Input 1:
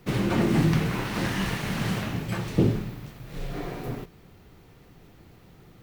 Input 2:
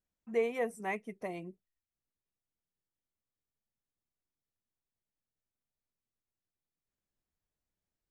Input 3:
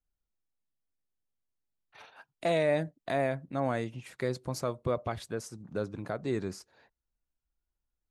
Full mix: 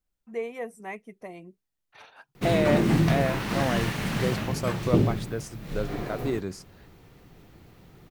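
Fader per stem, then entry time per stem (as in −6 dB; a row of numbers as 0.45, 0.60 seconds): 0.0, −1.5, +2.5 decibels; 2.35, 0.00, 0.00 seconds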